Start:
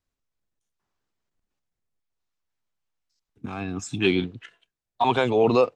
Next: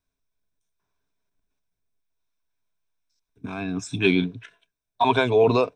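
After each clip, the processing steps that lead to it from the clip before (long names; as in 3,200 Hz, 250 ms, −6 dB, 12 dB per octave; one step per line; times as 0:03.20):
EQ curve with evenly spaced ripples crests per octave 1.6, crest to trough 9 dB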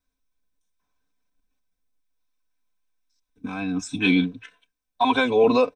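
comb filter 3.9 ms, depth 99%
level −2 dB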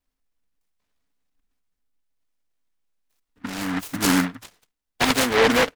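short delay modulated by noise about 1,300 Hz, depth 0.27 ms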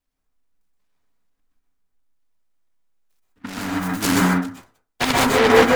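convolution reverb RT60 0.30 s, pre-delay 118 ms, DRR −2.5 dB
level −1 dB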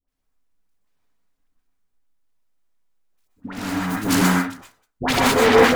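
all-pass dispersion highs, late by 82 ms, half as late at 950 Hz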